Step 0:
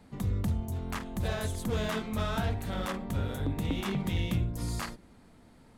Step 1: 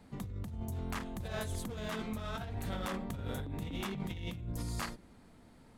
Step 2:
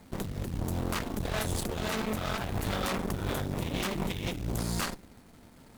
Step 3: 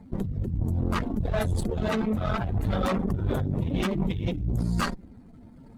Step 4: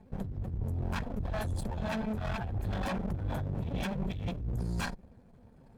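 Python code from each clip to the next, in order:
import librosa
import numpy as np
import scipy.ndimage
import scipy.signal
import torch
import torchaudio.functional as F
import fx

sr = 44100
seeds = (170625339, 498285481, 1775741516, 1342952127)

y1 = fx.over_compress(x, sr, threshold_db=-34.0, ratio=-1.0)
y1 = y1 * 10.0 ** (-4.5 / 20.0)
y2 = fx.quant_companded(y1, sr, bits=6)
y2 = fx.cheby_harmonics(y2, sr, harmonics=(8,), levels_db=(-11,), full_scale_db=-24.5)
y2 = y2 * 10.0 ** (4.0 / 20.0)
y3 = fx.spec_expand(y2, sr, power=1.8)
y3 = y3 * 10.0 ** (6.0 / 20.0)
y4 = fx.lower_of_two(y3, sr, delay_ms=1.2)
y4 = y4 * 10.0 ** (-7.5 / 20.0)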